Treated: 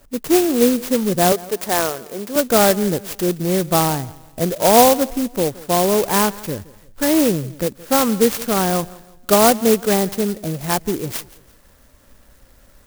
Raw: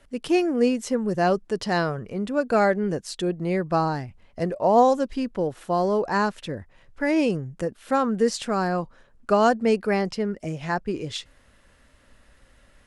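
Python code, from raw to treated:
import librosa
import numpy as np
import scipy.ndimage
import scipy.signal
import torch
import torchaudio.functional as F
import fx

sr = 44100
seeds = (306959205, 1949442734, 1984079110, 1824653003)

p1 = fx.highpass(x, sr, hz=360.0, slope=12, at=(1.32, 2.36))
p2 = p1 + fx.echo_feedback(p1, sr, ms=170, feedback_pct=36, wet_db=-20.5, dry=0)
p3 = fx.clock_jitter(p2, sr, seeds[0], jitter_ms=0.11)
y = p3 * 10.0 ** (6.0 / 20.0)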